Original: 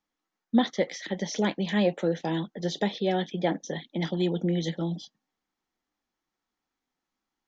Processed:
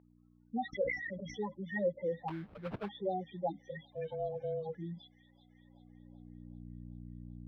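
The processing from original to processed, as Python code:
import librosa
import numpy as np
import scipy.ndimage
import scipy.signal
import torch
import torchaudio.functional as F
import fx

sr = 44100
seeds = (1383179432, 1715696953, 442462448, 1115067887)

p1 = fx.diode_clip(x, sr, knee_db=-16.5)
p2 = fx.graphic_eq(p1, sr, hz=(125, 250, 1000), db=(9, -7, 3))
p3 = fx.spec_topn(p2, sr, count=4)
p4 = p3 + fx.echo_wet_highpass(p3, sr, ms=383, feedback_pct=84, hz=2500.0, wet_db=-15.5, dry=0)
p5 = fx.ring_mod(p4, sr, carrier_hz=320.0, at=(3.92, 4.75))
p6 = fx.add_hum(p5, sr, base_hz=60, snr_db=15)
p7 = fx.filter_sweep_bandpass(p6, sr, from_hz=2000.0, to_hz=210.0, start_s=5.39, end_s=6.71, q=0.72)
p8 = fx.sample_hold(p7, sr, seeds[0], rate_hz=1900.0, jitter_pct=20, at=(2.28, 2.89))
p9 = fx.air_absorb(p8, sr, metres=410.0)
p10 = fx.sustainer(p9, sr, db_per_s=70.0, at=(0.72, 1.41), fade=0.02)
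y = F.gain(torch.from_numpy(p10), 6.5).numpy()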